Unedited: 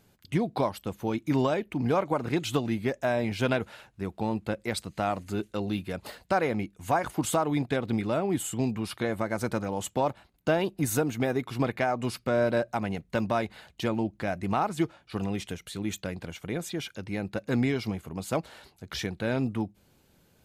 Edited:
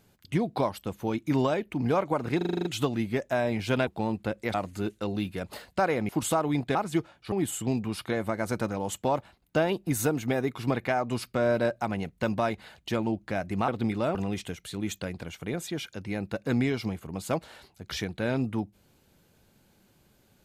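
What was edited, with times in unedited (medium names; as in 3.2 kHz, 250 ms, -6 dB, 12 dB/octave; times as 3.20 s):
2.37 s: stutter 0.04 s, 8 plays
3.59–4.09 s: delete
4.76–5.07 s: delete
6.62–7.11 s: delete
7.77–8.24 s: swap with 14.60–15.17 s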